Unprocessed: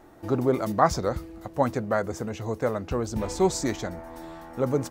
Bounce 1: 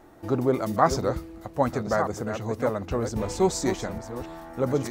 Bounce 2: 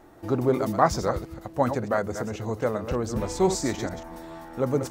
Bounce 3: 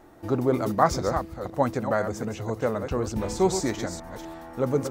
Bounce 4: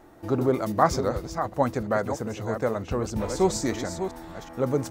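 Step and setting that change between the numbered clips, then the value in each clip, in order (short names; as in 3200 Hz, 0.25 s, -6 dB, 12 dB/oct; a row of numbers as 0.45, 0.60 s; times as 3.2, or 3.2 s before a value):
reverse delay, time: 0.714, 0.139, 0.25, 0.374 s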